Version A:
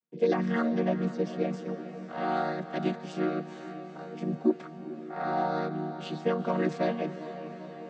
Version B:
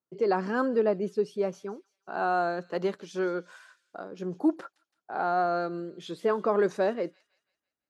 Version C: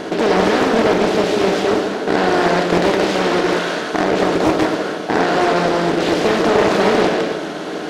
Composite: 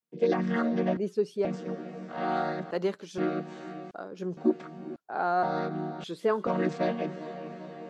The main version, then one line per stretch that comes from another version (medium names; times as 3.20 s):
A
0.97–1.45 s: from B
2.71–3.18 s: from B
3.91–4.37 s: from B
4.96–5.43 s: from B
6.04–6.47 s: from B
not used: C